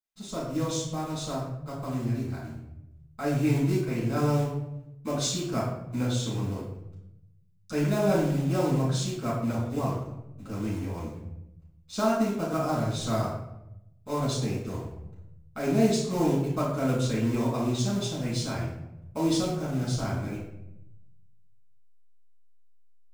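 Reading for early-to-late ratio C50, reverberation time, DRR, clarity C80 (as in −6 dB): 3.0 dB, 0.85 s, −9.0 dB, 6.0 dB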